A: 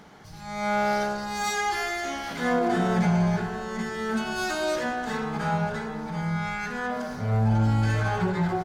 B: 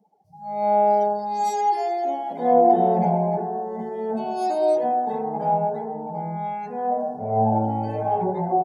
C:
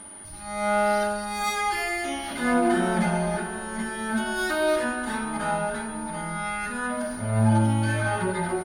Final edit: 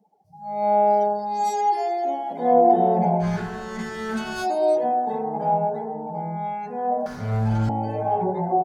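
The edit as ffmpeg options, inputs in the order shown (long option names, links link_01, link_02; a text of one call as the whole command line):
ffmpeg -i take0.wav -i take1.wav -filter_complex "[0:a]asplit=2[link_01][link_02];[1:a]asplit=3[link_03][link_04][link_05];[link_03]atrim=end=3.25[link_06];[link_01]atrim=start=3.19:end=4.47[link_07];[link_04]atrim=start=4.41:end=7.062[link_08];[link_02]atrim=start=7.058:end=7.692[link_09];[link_05]atrim=start=7.688[link_10];[link_06][link_07]acrossfade=duration=0.06:curve1=tri:curve2=tri[link_11];[link_11][link_08]acrossfade=duration=0.06:curve1=tri:curve2=tri[link_12];[link_12][link_09]acrossfade=duration=0.004:curve1=hsin:curve2=hsin[link_13];[link_13][link_10]acrossfade=duration=0.004:curve1=hsin:curve2=hsin" out.wav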